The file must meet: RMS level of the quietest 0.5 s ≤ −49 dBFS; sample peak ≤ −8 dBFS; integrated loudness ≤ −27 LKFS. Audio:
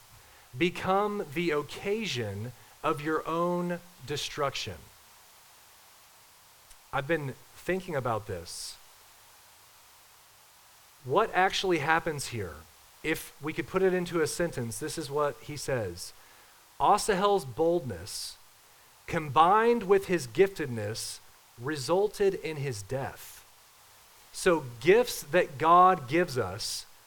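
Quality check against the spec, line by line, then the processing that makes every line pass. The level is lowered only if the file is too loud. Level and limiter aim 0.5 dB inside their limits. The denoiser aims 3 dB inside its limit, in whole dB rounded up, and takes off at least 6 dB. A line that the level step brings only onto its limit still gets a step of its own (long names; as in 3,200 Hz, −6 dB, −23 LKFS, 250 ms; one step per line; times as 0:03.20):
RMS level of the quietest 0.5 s −58 dBFS: in spec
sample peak −7.5 dBFS: out of spec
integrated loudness −29.0 LKFS: in spec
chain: brickwall limiter −8.5 dBFS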